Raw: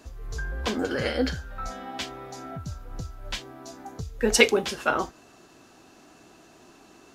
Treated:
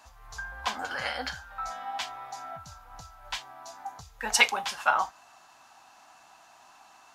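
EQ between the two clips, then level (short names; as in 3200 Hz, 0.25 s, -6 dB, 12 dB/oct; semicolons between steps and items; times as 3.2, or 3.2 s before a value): resonant low shelf 580 Hz -13 dB, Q 3; -2.0 dB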